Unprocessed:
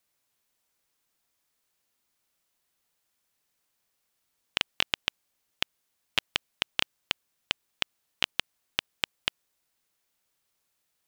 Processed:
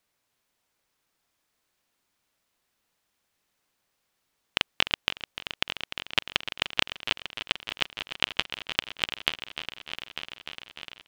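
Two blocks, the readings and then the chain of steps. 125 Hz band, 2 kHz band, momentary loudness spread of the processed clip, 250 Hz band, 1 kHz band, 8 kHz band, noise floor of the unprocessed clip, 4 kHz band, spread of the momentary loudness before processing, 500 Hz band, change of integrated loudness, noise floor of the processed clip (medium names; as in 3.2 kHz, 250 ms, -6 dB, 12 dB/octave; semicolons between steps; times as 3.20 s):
+5.0 dB, +4.0 dB, 12 LU, +5.0 dB, +4.5 dB, 0.0 dB, -78 dBFS, +3.0 dB, 6 LU, +5.0 dB, +2.0 dB, -78 dBFS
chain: treble shelf 5.8 kHz -8.5 dB; on a send: multi-head delay 299 ms, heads first and third, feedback 70%, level -12 dB; on the sum: trim +4 dB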